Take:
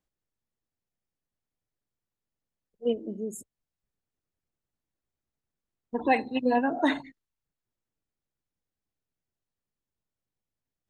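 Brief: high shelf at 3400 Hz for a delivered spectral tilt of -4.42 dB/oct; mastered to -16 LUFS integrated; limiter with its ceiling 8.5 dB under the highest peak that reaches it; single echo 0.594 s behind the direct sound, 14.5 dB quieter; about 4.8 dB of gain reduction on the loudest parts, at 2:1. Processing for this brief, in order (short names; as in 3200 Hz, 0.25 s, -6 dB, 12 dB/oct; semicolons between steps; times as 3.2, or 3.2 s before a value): high shelf 3400 Hz -7 dB; compressor 2:1, threshold -27 dBFS; limiter -23 dBFS; echo 0.594 s -14.5 dB; gain +19.5 dB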